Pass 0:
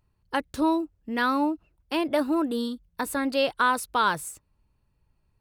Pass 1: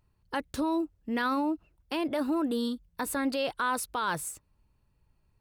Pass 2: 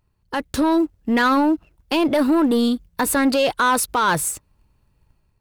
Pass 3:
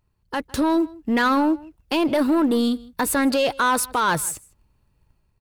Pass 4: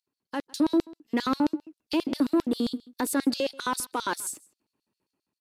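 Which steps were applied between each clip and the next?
brickwall limiter −21 dBFS, peak gain reduction 9.5 dB
leveller curve on the samples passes 1; automatic gain control gain up to 6 dB; level +4 dB
slap from a distant wall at 27 metres, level −22 dB; level −2 dB
downsampling to 32,000 Hz; auto-filter high-pass square 7.5 Hz 280–4,400 Hz; level −8.5 dB

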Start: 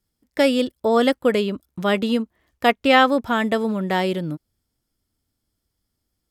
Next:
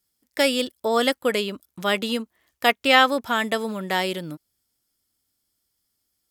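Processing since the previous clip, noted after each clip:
spectral tilt +2.5 dB per octave
level −1.5 dB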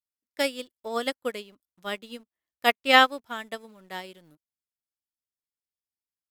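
in parallel at −5 dB: centre clipping without the shift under −30 dBFS
on the sum: expander for the loud parts 2.5 to 1, over −24 dBFS
level −3.5 dB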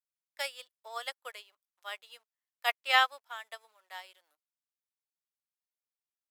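high-pass filter 700 Hz 24 dB per octave
level −6.5 dB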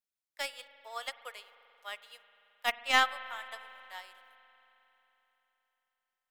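stylus tracing distortion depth 0.039 ms
spring reverb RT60 3.7 s, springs 44 ms, chirp 80 ms, DRR 14 dB
level −1 dB

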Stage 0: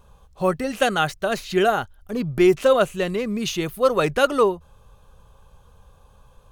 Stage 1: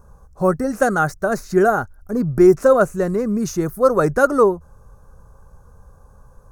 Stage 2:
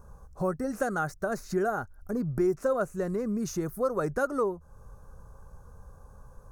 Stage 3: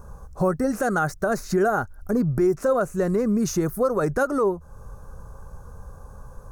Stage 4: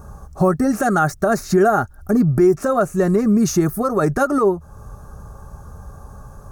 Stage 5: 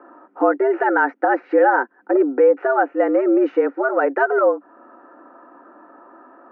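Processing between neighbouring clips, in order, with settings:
drawn EQ curve 290 Hz 0 dB, 950 Hz −4 dB, 1,500 Hz −1 dB, 3,100 Hz −29 dB, 5,500 Hz −4 dB; level +5.5 dB
downward compressor 2 to 1, threshold −30 dBFS, peak gain reduction 12.5 dB; level −3 dB
brickwall limiter −21.5 dBFS, peak gain reduction 6.5 dB; level +8.5 dB
notch comb filter 500 Hz; level +7 dB
single-sideband voice off tune +130 Hz 180–2,500 Hz

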